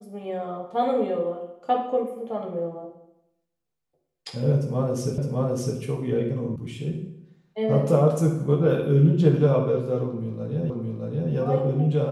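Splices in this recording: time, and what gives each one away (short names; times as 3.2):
5.18 repeat of the last 0.61 s
6.56 sound cut off
10.7 repeat of the last 0.62 s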